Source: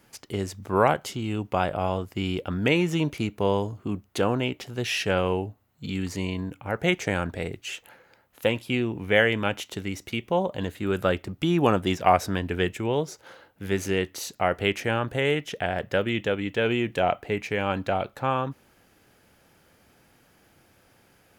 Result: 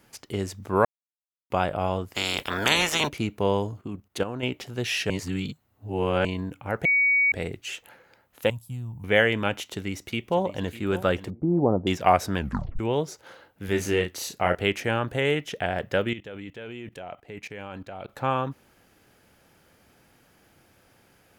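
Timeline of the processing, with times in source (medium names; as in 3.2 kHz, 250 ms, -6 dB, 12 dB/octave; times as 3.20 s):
0.85–1.50 s: mute
2.13–3.07 s: spectral peaks clipped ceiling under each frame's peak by 30 dB
3.81–4.43 s: level held to a coarse grid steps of 11 dB
5.10–6.25 s: reverse
6.85–7.32 s: bleep 2.25 kHz -17.5 dBFS
8.50–9.04 s: FFT filter 130 Hz 0 dB, 200 Hz -10 dB, 370 Hz -28 dB, 910 Hz -11 dB, 1.6 kHz -22 dB, 2.3 kHz -30 dB, 3.6 kHz -20 dB, 8 kHz -3 dB, 14 kHz +3 dB
9.71–10.80 s: echo throw 600 ms, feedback 40%, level -14.5 dB
11.30–11.87 s: inverse Chebyshev low-pass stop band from 3.6 kHz, stop band 70 dB
12.37 s: tape stop 0.42 s
13.65–14.55 s: doubling 34 ms -5 dB
16.13–18.09 s: level held to a coarse grid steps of 19 dB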